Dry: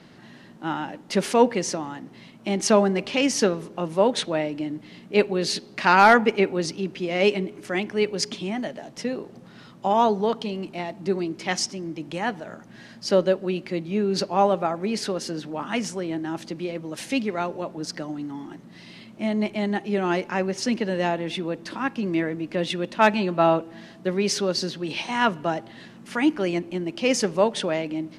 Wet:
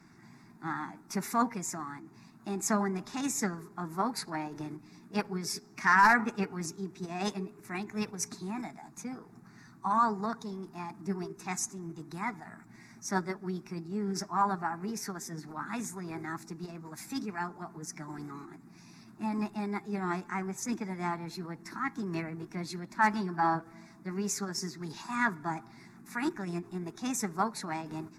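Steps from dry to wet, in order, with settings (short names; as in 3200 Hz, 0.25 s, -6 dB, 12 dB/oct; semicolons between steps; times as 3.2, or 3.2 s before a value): bin magnitudes rounded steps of 15 dB; formant shift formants +3 st; fixed phaser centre 1300 Hz, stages 4; gain -4.5 dB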